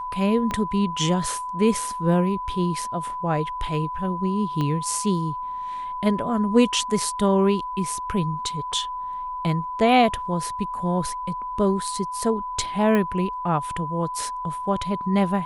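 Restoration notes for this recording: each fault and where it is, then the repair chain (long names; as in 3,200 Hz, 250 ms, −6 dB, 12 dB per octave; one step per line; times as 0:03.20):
whistle 1,000 Hz −28 dBFS
0:00.51: click −14 dBFS
0:04.61: click −15 dBFS
0:08.72–0:08.73: drop-out 5.5 ms
0:12.95: click −12 dBFS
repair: click removal
notch filter 1,000 Hz, Q 30
repair the gap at 0:08.72, 5.5 ms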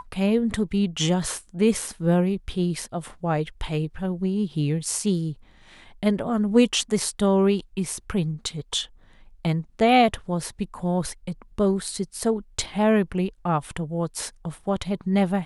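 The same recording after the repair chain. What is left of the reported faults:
0:00.51: click
0:04.61: click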